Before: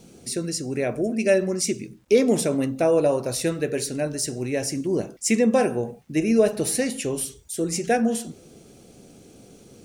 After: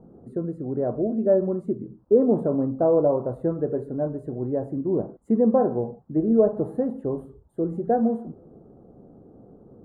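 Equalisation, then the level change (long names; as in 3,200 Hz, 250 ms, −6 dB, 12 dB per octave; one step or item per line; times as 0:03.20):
inverse Chebyshev low-pass filter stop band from 2,200 Hz, stop band 40 dB
0.0 dB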